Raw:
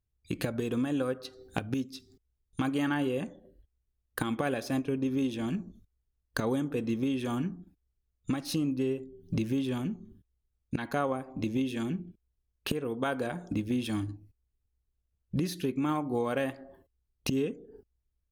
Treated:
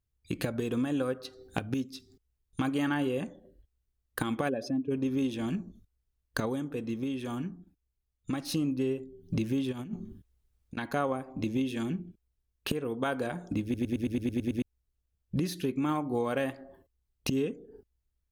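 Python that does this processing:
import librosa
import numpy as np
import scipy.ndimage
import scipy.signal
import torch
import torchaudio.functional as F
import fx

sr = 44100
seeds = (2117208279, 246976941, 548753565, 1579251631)

y = fx.spec_expand(x, sr, power=1.8, at=(4.48, 4.9), fade=0.02)
y = fx.over_compress(y, sr, threshold_db=-37.0, ratio=-0.5, at=(9.71, 10.81), fade=0.02)
y = fx.edit(y, sr, fx.clip_gain(start_s=6.46, length_s=1.87, db=-3.5),
    fx.stutter_over(start_s=13.63, slice_s=0.11, count=9), tone=tone)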